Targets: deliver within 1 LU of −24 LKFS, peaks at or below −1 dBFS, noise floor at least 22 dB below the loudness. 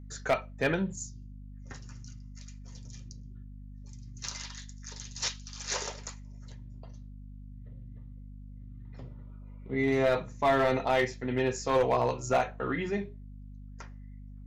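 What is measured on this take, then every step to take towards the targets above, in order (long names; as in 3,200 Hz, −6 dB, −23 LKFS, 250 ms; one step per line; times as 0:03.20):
share of clipped samples 0.4%; peaks flattened at −19.0 dBFS; mains hum 50 Hz; hum harmonics up to 250 Hz; level of the hum −43 dBFS; integrated loudness −30.0 LKFS; sample peak −19.0 dBFS; target loudness −24.0 LKFS
→ clipped peaks rebuilt −19 dBFS
mains-hum notches 50/100/150/200/250 Hz
level +6 dB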